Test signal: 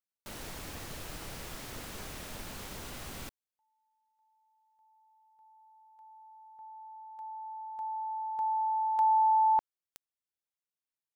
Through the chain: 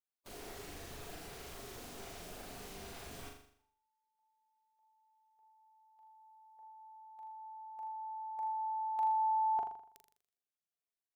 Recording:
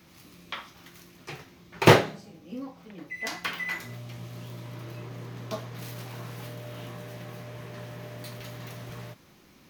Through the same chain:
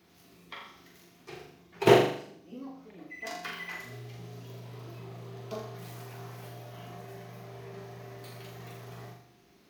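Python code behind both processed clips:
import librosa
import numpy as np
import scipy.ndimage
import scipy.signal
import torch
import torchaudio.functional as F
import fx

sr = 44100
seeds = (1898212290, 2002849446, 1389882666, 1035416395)

p1 = fx.spec_quant(x, sr, step_db=15)
p2 = fx.hum_notches(p1, sr, base_hz=50, count=3)
p3 = fx.small_body(p2, sr, hz=(410.0, 700.0), ring_ms=55, db=11)
p4 = p3 + fx.room_flutter(p3, sr, wall_m=7.0, rt60_s=0.61, dry=0)
y = F.gain(torch.from_numpy(p4), -8.0).numpy()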